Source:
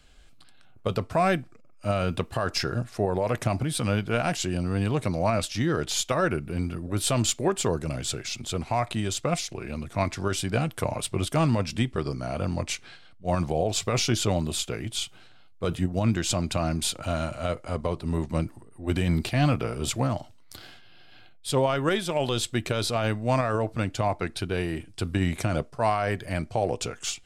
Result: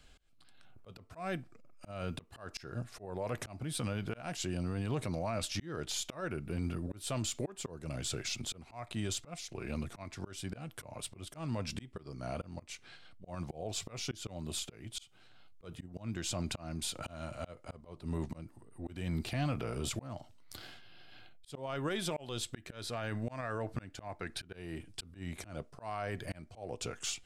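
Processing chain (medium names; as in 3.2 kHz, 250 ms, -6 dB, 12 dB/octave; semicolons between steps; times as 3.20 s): 22.50–24.55 s: dynamic bell 1.7 kHz, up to +7 dB, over -49 dBFS, Q 3.1; slow attack 483 ms; peak limiter -23 dBFS, peak gain reduction 10.5 dB; trim -3.5 dB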